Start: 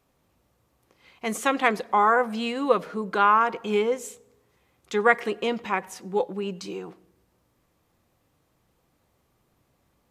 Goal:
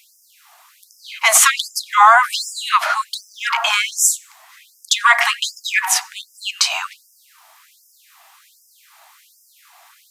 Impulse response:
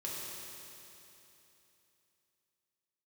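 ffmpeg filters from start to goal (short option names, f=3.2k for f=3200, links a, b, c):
-af "acompressor=threshold=-21dB:ratio=4,apsyclip=28.5dB,highpass=f=210:p=1,afftfilt=real='re*gte(b*sr/1024,600*pow(5000/600,0.5+0.5*sin(2*PI*1.3*pts/sr)))':imag='im*gte(b*sr/1024,600*pow(5000/600,0.5+0.5*sin(2*PI*1.3*pts/sr)))':win_size=1024:overlap=0.75,volume=-3dB"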